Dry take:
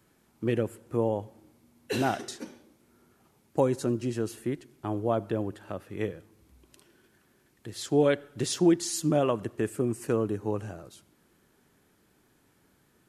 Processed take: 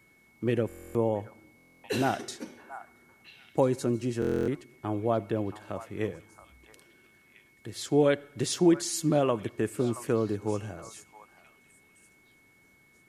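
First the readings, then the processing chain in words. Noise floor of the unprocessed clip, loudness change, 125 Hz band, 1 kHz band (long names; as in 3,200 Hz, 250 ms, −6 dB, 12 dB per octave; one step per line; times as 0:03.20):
−67 dBFS, 0.0 dB, 0.0 dB, 0.0 dB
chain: echo through a band-pass that steps 674 ms, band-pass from 1,100 Hz, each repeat 1.4 octaves, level −10 dB
steady tone 2,200 Hz −61 dBFS
buffer that repeats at 0:00.67/0:01.56/0:04.20, samples 1,024, times 11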